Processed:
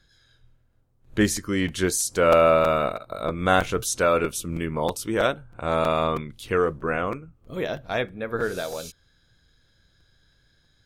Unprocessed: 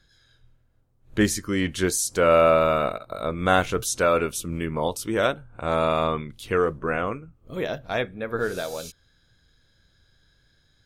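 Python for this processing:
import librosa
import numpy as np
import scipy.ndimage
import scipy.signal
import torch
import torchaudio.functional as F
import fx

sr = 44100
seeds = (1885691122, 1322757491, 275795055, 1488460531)

y = fx.buffer_crackle(x, sr, first_s=0.72, period_s=0.32, block=256, kind='repeat')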